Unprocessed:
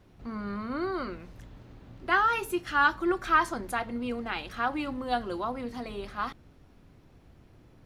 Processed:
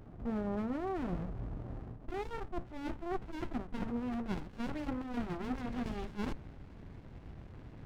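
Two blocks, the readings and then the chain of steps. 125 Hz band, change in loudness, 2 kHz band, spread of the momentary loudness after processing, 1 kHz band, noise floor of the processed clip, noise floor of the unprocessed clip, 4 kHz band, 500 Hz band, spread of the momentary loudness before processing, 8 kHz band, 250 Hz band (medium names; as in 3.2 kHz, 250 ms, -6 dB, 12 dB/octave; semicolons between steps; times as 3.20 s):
+3.0 dB, -10.0 dB, -19.5 dB, 15 LU, -15.5 dB, -52 dBFS, -57 dBFS, -14.0 dB, -7.0 dB, 13 LU, under -10 dB, -3.0 dB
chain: saturation -13 dBFS, distortion -22 dB; low-pass sweep 710 Hz -> 2.1 kHz, 3.04–5.31 s; reverse; compression 12:1, threshold -38 dBFS, peak gain reduction 19 dB; reverse; sliding maximum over 65 samples; trim +7.5 dB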